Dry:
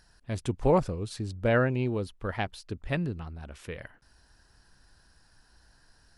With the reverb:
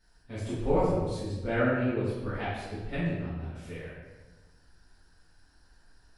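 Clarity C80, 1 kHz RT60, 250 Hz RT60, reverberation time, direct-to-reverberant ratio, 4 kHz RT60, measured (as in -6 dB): 1.5 dB, 1.1 s, 1.6 s, 1.3 s, -13.5 dB, 0.85 s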